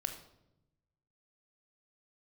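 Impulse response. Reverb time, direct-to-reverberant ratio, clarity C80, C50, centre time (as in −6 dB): 0.90 s, 5.5 dB, 11.5 dB, 8.5 dB, 16 ms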